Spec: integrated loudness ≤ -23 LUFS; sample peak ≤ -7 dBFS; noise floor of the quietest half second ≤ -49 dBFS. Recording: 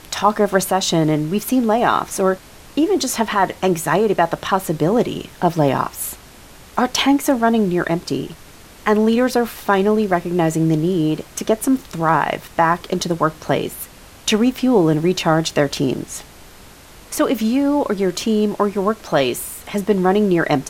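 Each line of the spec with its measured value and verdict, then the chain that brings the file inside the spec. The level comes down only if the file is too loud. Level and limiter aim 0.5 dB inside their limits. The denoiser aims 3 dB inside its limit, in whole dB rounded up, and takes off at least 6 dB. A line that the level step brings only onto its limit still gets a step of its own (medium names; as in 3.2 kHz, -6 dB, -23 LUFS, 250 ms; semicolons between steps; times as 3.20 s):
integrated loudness -18.5 LUFS: fail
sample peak -2.0 dBFS: fail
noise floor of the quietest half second -42 dBFS: fail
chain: noise reduction 6 dB, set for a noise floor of -42 dBFS; trim -5 dB; peak limiter -7.5 dBFS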